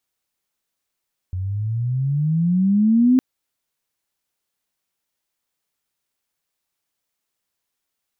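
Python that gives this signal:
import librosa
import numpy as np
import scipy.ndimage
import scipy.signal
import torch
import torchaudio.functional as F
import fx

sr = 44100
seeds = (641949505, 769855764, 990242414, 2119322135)

y = fx.riser_tone(sr, length_s=1.86, level_db=-10.5, wave='sine', hz=89.8, rise_st=18.5, swell_db=12)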